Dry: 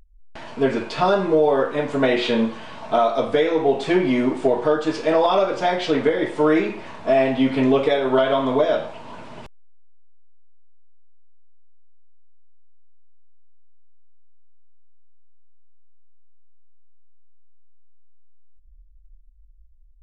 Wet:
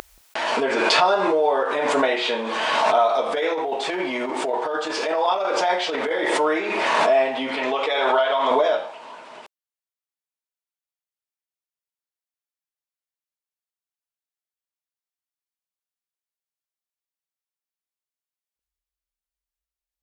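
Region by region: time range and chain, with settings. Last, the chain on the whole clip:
3.33–6.30 s: compressor with a negative ratio -20 dBFS, ratio -0.5 + word length cut 12-bit, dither none
7.56–8.51 s: low-pass 7.1 kHz + bass shelf 350 Hz -11 dB + comb 6.3 ms, depth 32%
whole clip: dynamic bell 860 Hz, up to +4 dB, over -37 dBFS, Q 3.6; high-pass 520 Hz 12 dB/octave; swell ahead of each attack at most 23 dB/s

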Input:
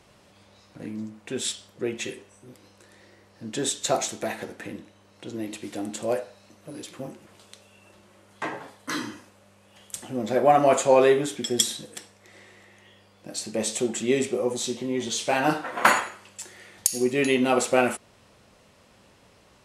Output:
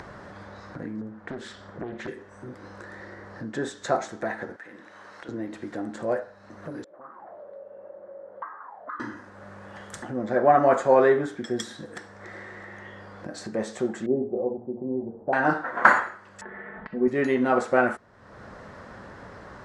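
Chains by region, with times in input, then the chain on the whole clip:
1.01–2.08 s: treble shelf 4.7 kHz -10 dB + compression 5:1, threshold -31 dBFS + loudspeaker Doppler distortion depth 0.73 ms
4.56–5.29 s: high-pass 1.4 kHz 6 dB/octave + compression 1.5:1, threshold -59 dBFS
6.84–9.00 s: jump at every zero crossing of -42.5 dBFS + low-pass 2.2 kHz 6 dB/octave + auto-wah 430–1200 Hz, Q 9.8, up, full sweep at -32 dBFS
14.06–15.33 s: Chebyshev low-pass 790 Hz, order 4 + hum notches 60/120/180/240/300/360/420 Hz
16.41–17.08 s: Bessel low-pass 1.6 kHz, order 8 + comb 4.6 ms, depth 88%
whole clip: low-pass 5.3 kHz 12 dB/octave; resonant high shelf 2.1 kHz -7.5 dB, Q 3; upward compressor, threshold -29 dBFS; trim -1 dB

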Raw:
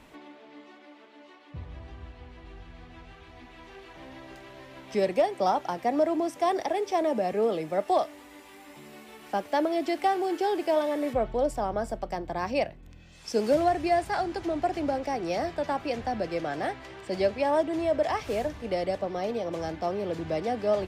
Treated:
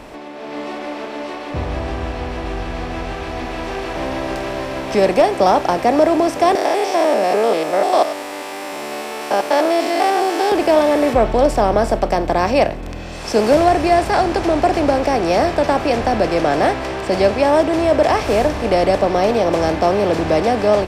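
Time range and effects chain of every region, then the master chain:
6.55–10.52 s: spectrogram pixelated in time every 100 ms + high-pass 450 Hz + treble shelf 4.2 kHz +6 dB
whole clip: spectral levelling over time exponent 0.6; level rider gain up to 10 dB; bass shelf 72 Hz +8 dB

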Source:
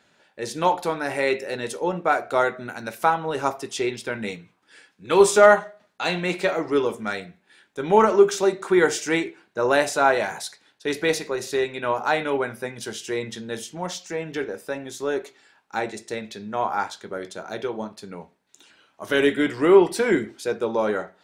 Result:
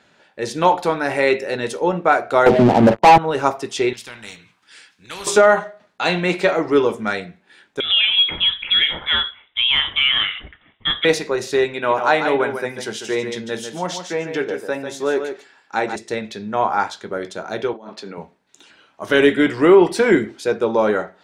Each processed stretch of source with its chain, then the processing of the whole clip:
2.46–3.18 s: brick-wall FIR low-pass 1 kHz + waveshaping leveller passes 5 + three bands compressed up and down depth 40%
3.93–5.27 s: amplifier tone stack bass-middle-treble 5-5-5 + spectrum-flattening compressor 2:1
7.80–11.05 s: frequency inversion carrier 3.7 kHz + compression 3:1, threshold -18 dBFS
11.73–15.96 s: high-pass 160 Hz 6 dB/octave + delay 146 ms -8 dB
17.73–18.18 s: three-band isolator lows -23 dB, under 210 Hz, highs -14 dB, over 6.5 kHz + compressor with a negative ratio -41 dBFS
whole clip: treble shelf 9.3 kHz -12 dB; loudness maximiser +7 dB; trim -1 dB

